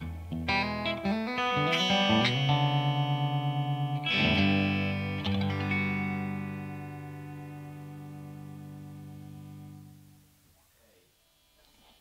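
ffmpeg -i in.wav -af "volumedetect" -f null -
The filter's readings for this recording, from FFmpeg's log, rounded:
mean_volume: -31.0 dB
max_volume: -12.1 dB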